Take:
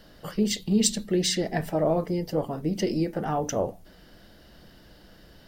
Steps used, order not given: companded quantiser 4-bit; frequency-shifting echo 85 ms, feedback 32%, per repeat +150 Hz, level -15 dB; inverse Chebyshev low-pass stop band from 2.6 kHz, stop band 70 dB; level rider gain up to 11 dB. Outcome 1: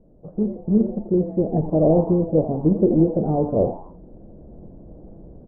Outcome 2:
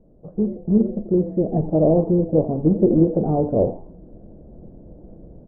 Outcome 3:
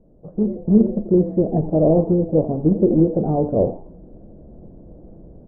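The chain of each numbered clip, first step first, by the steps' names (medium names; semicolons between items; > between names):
companded quantiser > level rider > inverse Chebyshev low-pass > frequency-shifting echo; level rider > frequency-shifting echo > companded quantiser > inverse Chebyshev low-pass; companded quantiser > frequency-shifting echo > inverse Chebyshev low-pass > level rider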